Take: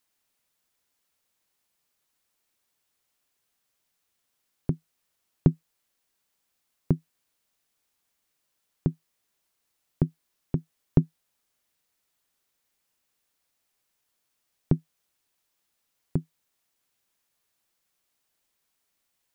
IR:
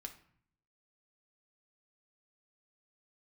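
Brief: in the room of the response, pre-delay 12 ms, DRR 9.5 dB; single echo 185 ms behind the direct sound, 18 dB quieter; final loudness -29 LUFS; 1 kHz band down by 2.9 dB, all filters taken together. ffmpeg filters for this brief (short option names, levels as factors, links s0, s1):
-filter_complex "[0:a]equalizer=f=1000:t=o:g=-4,aecho=1:1:185:0.126,asplit=2[s0][s1];[1:a]atrim=start_sample=2205,adelay=12[s2];[s1][s2]afir=irnorm=-1:irlink=0,volume=0.531[s3];[s0][s3]amix=inputs=2:normalize=0,volume=1.06"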